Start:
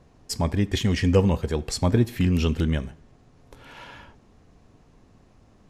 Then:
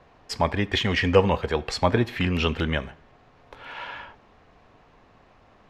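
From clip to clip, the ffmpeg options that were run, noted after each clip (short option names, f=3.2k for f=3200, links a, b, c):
-filter_complex "[0:a]acrossover=split=530 3900:gain=0.224 1 0.1[a][b][c];[a][b][c]amix=inputs=3:normalize=0,volume=8.5dB"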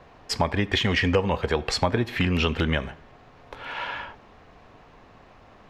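-af "acompressor=threshold=-24dB:ratio=4,volume=4.5dB"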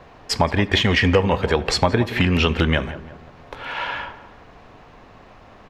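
-filter_complex "[0:a]asplit=2[a][b];[b]adelay=173,lowpass=f=1.7k:p=1,volume=-13.5dB,asplit=2[c][d];[d]adelay=173,lowpass=f=1.7k:p=1,volume=0.47,asplit=2[e][f];[f]adelay=173,lowpass=f=1.7k:p=1,volume=0.47,asplit=2[g][h];[h]adelay=173,lowpass=f=1.7k:p=1,volume=0.47,asplit=2[i][j];[j]adelay=173,lowpass=f=1.7k:p=1,volume=0.47[k];[a][c][e][g][i][k]amix=inputs=6:normalize=0,volume=5dB"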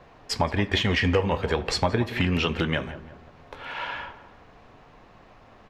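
-af "flanger=delay=5.5:depth=8.1:regen=-68:speed=0.39:shape=triangular,volume=-1.5dB"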